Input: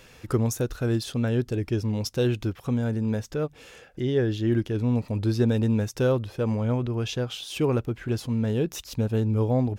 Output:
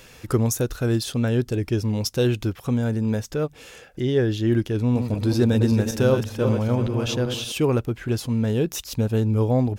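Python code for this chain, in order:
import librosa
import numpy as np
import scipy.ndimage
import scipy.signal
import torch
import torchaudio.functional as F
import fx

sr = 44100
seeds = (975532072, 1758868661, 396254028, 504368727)

y = fx.reverse_delay_fb(x, sr, ms=192, feedback_pct=51, wet_db=-6, at=(4.76, 7.52))
y = fx.high_shelf(y, sr, hz=5800.0, db=5.5)
y = y * librosa.db_to_amplitude(3.0)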